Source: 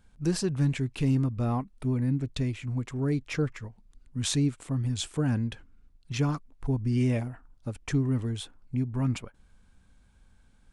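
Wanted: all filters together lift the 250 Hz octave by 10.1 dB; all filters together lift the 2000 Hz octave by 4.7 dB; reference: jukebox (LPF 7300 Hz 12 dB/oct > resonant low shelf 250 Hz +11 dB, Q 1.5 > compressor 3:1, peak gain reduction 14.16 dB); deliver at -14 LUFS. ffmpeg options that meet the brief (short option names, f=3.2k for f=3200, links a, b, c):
-af "lowpass=7.3k,lowshelf=f=250:t=q:w=1.5:g=11,equalizer=f=250:t=o:g=4,equalizer=f=2k:t=o:g=6,acompressor=threshold=-27dB:ratio=3,volume=14.5dB"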